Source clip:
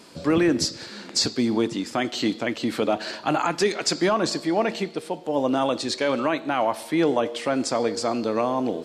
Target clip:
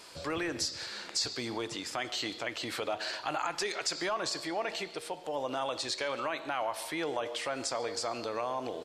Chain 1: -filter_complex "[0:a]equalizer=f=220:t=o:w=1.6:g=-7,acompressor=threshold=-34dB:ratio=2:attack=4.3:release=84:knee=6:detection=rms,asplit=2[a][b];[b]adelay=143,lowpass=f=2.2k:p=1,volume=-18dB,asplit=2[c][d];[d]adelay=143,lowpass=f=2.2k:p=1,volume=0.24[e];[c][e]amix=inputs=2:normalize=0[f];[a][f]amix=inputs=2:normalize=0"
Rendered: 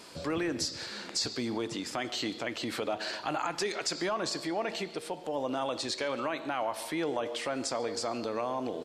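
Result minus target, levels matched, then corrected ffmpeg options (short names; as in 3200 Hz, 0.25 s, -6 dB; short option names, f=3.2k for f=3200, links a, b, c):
250 Hz band +4.0 dB
-filter_complex "[0:a]equalizer=f=220:t=o:w=1.6:g=-17,acompressor=threshold=-34dB:ratio=2:attack=4.3:release=84:knee=6:detection=rms,asplit=2[a][b];[b]adelay=143,lowpass=f=2.2k:p=1,volume=-18dB,asplit=2[c][d];[d]adelay=143,lowpass=f=2.2k:p=1,volume=0.24[e];[c][e]amix=inputs=2:normalize=0[f];[a][f]amix=inputs=2:normalize=0"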